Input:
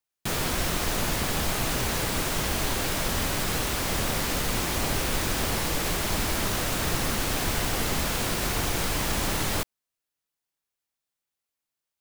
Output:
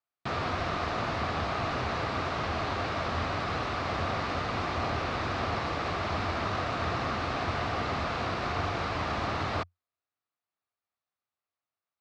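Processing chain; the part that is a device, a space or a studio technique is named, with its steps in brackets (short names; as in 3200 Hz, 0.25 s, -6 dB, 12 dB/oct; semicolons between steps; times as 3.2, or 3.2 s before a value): guitar cabinet (speaker cabinet 80–4200 Hz, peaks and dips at 88 Hz +9 dB, 180 Hz -3 dB, 700 Hz +7 dB, 1200 Hz +9 dB, 3200 Hz -5 dB); gain -4 dB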